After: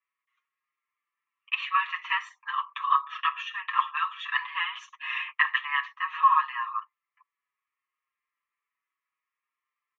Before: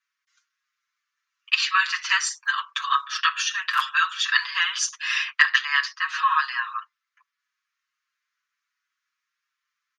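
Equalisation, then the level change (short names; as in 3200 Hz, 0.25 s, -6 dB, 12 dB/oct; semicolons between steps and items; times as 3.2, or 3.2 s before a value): band-pass 780 Hz, Q 0.77; air absorption 140 m; fixed phaser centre 1000 Hz, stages 8; +4.0 dB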